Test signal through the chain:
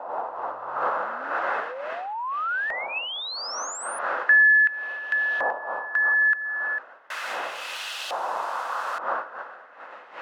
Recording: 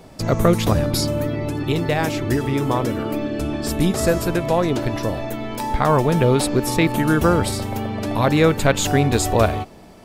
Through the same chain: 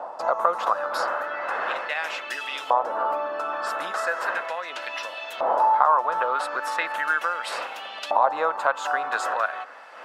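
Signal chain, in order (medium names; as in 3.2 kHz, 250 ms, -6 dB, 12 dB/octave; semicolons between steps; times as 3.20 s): wind noise 400 Hz -23 dBFS; high-pass 290 Hz 12 dB/octave; high-order bell 940 Hz +11 dB; band-stop 2.3 kHz, Q 12; compression 2.5:1, threshold -19 dBFS; LFO band-pass saw up 0.37 Hz 810–3200 Hz; treble shelf 2 kHz +12 dB; small resonant body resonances 510/2600 Hz, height 7 dB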